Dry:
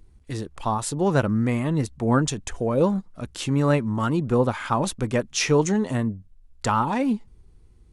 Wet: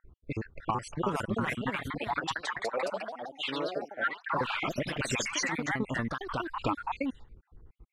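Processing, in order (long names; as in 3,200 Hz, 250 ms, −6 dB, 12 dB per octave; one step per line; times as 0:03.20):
time-frequency cells dropped at random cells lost 63%
0:01.98–0:04.23: high-pass filter 690 Hz 12 dB per octave
low-pass that shuts in the quiet parts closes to 1,000 Hz, open at −21.5 dBFS
parametric band 1,700 Hz +11.5 dB 2.2 octaves
downward compressor 5 to 1, threshold −30 dBFS, peak gain reduction 16.5 dB
delay with pitch and tempo change per echo 418 ms, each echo +2 semitones, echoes 3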